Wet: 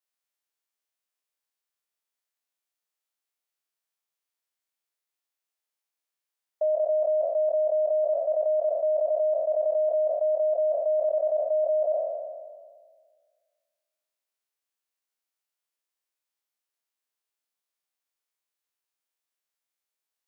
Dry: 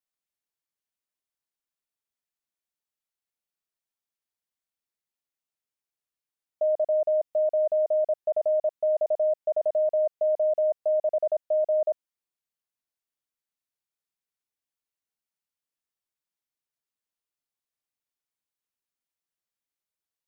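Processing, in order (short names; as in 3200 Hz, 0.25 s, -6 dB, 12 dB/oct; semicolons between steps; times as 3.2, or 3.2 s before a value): spectral trails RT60 1.77 s; HPF 410 Hz 12 dB/oct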